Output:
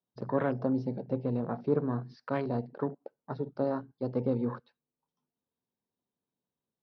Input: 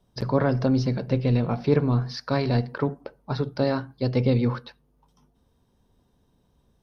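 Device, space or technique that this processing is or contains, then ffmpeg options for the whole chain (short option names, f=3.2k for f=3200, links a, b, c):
over-cleaned archive recording: -af "highpass=180,lowpass=5.4k,afwtdn=0.0224,volume=-6dB"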